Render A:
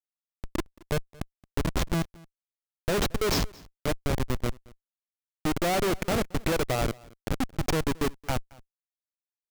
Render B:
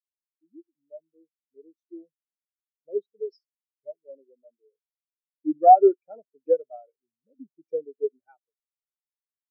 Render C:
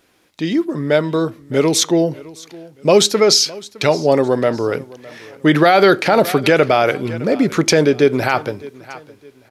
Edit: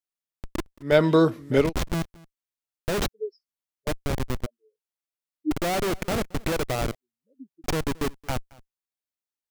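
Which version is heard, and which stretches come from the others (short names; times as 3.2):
A
0.92–1.61 from C, crossfade 0.24 s
3.08–3.87 from B
4.46–5.51 from B
6.95–7.64 from B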